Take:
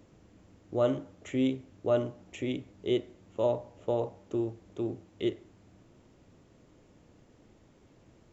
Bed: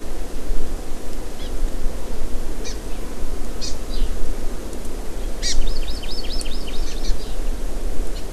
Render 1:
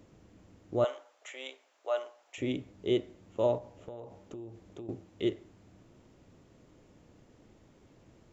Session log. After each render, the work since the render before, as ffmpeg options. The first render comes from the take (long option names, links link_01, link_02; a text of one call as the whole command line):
ffmpeg -i in.wav -filter_complex "[0:a]asettb=1/sr,asplit=3[link_01][link_02][link_03];[link_01]atrim=end=0.844[link_04];[link_02]atrim=start=0.84:end=2.38,asetpts=PTS-STARTPTS,afade=type=in:duration=0.004:curve=qsin,afade=type=out:start_time=1.536:duration=0.004:curve=qsin,highpass=frequency=650:width=0.5412,highpass=frequency=650:width=1.3066[link_05];[link_03]atrim=start=2.376[link_06];[link_04][link_05]acrossfade=duration=0.004:curve1=hsin:curve2=qsin[link_07];[link_07][link_06]acrossfade=duration=0.004:curve1=qsin:curve2=hsin,asettb=1/sr,asplit=3[link_08][link_09][link_10];[link_08]atrim=end=3.584[link_11];[link_09]atrim=start=3.58:end=4.89,asetpts=PTS-STARTPTS,afade=type=in:duration=0.004:curve=qsin,afade=type=out:start_time=1.306:duration=0.004:curve=qsin,acompressor=threshold=-41dB:ratio=6:attack=3.2:release=140:knee=1:detection=peak[link_12];[link_10]atrim=start=4.886[link_13];[link_11][link_12]acrossfade=duration=0.004:curve1=hsin:curve2=qsin[link_14];[link_14][link_13]acrossfade=duration=0.004:curve1=qsin:curve2=hsin" out.wav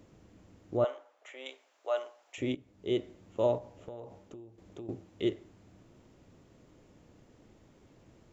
ffmpeg -i in.wav -filter_complex "[0:a]asettb=1/sr,asplit=3[link_01][link_02][link_03];[link_01]atrim=end=0.774[link_04];[link_02]atrim=start=0.77:end=1.46,asetpts=PTS-STARTPTS,afade=type=in:duration=0.004:curve=qsin,afade=type=out:start_time=0.686:duration=0.004:curve=qsin,highshelf=frequency=3200:gain=-11.5[link_05];[link_03]atrim=start=1.456[link_06];[link_04][link_05]acrossfade=duration=0.004:curve1=hsin:curve2=qsin[link_07];[link_07][link_06]acrossfade=duration=0.004:curve1=qsin:curve2=hsin,asplit=3[link_08][link_09][link_10];[link_08]atrim=end=2.55,asetpts=PTS-STARTPTS,afade=type=out:start_time=2.546:duration=0.004:curve=hsin:silence=0.158489[link_11];[link_09]atrim=start=2.55:end=4.58,asetpts=PTS-STARTPTS,afade=type=in:duration=0.52:silence=0.158489,afade=type=out:start_time=1.58:duration=0.45:silence=0.266073[link_12];[link_10]atrim=start=4.58,asetpts=PTS-STARTPTS,afade=type=in:duration=0.004:curve=hsin:silence=0.266073[link_13];[link_11][link_12][link_13]concat=n=3:v=0:a=1" out.wav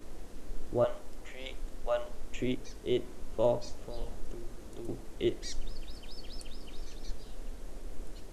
ffmpeg -i in.wav -i bed.wav -filter_complex "[1:a]volume=-18.5dB[link_01];[0:a][link_01]amix=inputs=2:normalize=0" out.wav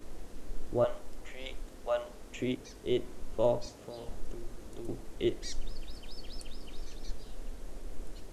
ffmpeg -i in.wav -filter_complex "[0:a]asettb=1/sr,asplit=3[link_01][link_02][link_03];[link_01]atrim=end=1.624[link_04];[link_02]atrim=start=1.62:end=2.85,asetpts=PTS-STARTPTS,afade=type=in:duration=0.004:curve=qsin,afade=type=out:start_time=1.226:duration=0.004:curve=qsin,highpass=frequency=59:poles=1[link_05];[link_03]atrim=start=2.846[link_06];[link_04][link_05]acrossfade=duration=0.004:curve1=hsin:curve2=qsin[link_07];[link_07][link_06]acrossfade=duration=0.004:curve1=qsin:curve2=hsin,asettb=1/sr,asplit=3[link_08][link_09][link_10];[link_08]atrim=end=3.664[link_11];[link_09]atrim=start=3.66:end=4.09,asetpts=PTS-STARTPTS,afade=type=in:duration=0.004:curve=qsin,afade=type=out:start_time=0.426:duration=0.004:curve=qsin,highpass=90[link_12];[link_10]atrim=start=4.086[link_13];[link_11][link_12]acrossfade=duration=0.004:curve1=hsin:curve2=qsin[link_14];[link_14][link_13]acrossfade=duration=0.004:curve1=qsin:curve2=hsin" out.wav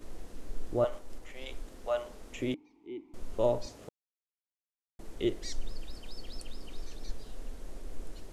ffmpeg -i in.wav -filter_complex "[0:a]asettb=1/sr,asplit=3[link_01][link_02][link_03];[link_01]atrim=end=0.884[link_04];[link_02]atrim=start=0.88:end=1.48,asetpts=PTS-STARTPTS,afade=type=in:duration=0.004:curve=qsin,afade=type=out:start_time=0.596:duration=0.004:curve=qsin,aeval=exprs='if(lt(val(0),0),0.708*val(0),val(0))':channel_layout=same[link_05];[link_03]atrim=start=1.476[link_06];[link_04][link_05]acrossfade=duration=0.004:curve1=hsin:curve2=qsin[link_07];[link_07][link_06]acrossfade=duration=0.004:curve1=qsin:curve2=hsin,asettb=1/sr,asplit=3[link_08][link_09][link_10];[link_08]atrim=end=2.544[link_11];[link_09]atrim=start=2.54:end=3.14,asetpts=PTS-STARTPTS,afade=type=in:duration=0.004:curve=qsin,afade=type=out:start_time=0.596:duration=0.004:curve=qsin,asplit=3[link_12][link_13][link_14];[link_12]bandpass=frequency=300:width_type=q:width=8,volume=0dB[link_15];[link_13]bandpass=frequency=870:width_type=q:width=8,volume=-6dB[link_16];[link_14]bandpass=frequency=2240:width_type=q:width=8,volume=-9dB[link_17];[link_15][link_16][link_17]amix=inputs=3:normalize=0[link_18];[link_10]atrim=start=3.136[link_19];[link_11][link_18]acrossfade=duration=0.004:curve1=hsin:curve2=qsin[link_20];[link_20][link_19]acrossfade=duration=0.004:curve1=qsin:curve2=hsin,asplit=3[link_21][link_22][link_23];[link_21]atrim=end=3.89,asetpts=PTS-STARTPTS,afade=type=out:start_time=3.886:duration=0.004:curve=hsin[link_24];[link_22]atrim=start=3.89:end=4.99,asetpts=PTS-STARTPTS,volume=0[link_25];[link_23]atrim=start=4.99,asetpts=PTS-STARTPTS,afade=type=in:duration=0.004:curve=hsin[link_26];[link_24][link_25][link_26]concat=n=3:v=0:a=1" out.wav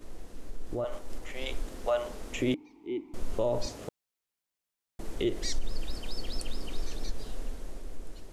ffmpeg -i in.wav -af "alimiter=level_in=2.5dB:limit=-24dB:level=0:latency=1:release=105,volume=-2.5dB,dynaudnorm=framelen=110:gausssize=17:maxgain=7.5dB" out.wav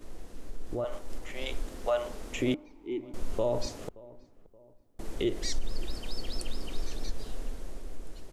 ffmpeg -i in.wav -filter_complex "[0:a]asplit=2[link_01][link_02];[link_02]adelay=575,lowpass=frequency=1200:poles=1,volume=-20.5dB,asplit=2[link_03][link_04];[link_04]adelay=575,lowpass=frequency=1200:poles=1,volume=0.44,asplit=2[link_05][link_06];[link_06]adelay=575,lowpass=frequency=1200:poles=1,volume=0.44[link_07];[link_01][link_03][link_05][link_07]amix=inputs=4:normalize=0" out.wav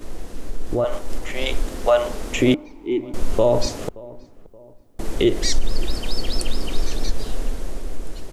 ffmpeg -i in.wav -af "volume=12dB" out.wav